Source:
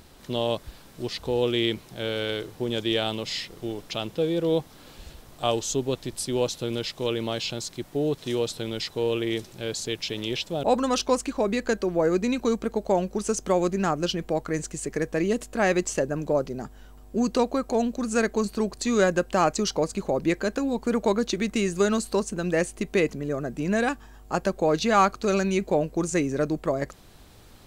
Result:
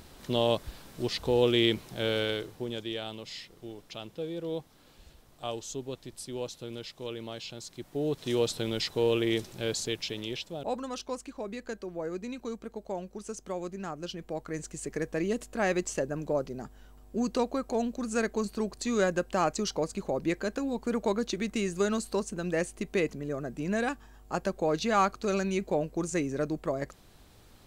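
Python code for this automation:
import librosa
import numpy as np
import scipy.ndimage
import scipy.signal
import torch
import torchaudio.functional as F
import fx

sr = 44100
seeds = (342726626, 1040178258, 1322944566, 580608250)

y = fx.gain(x, sr, db=fx.line((2.16, 0.0), (2.94, -11.0), (7.53, -11.0), (8.43, -0.5), (9.7, -0.5), (10.91, -13.0), (13.91, -13.0), (14.87, -5.5)))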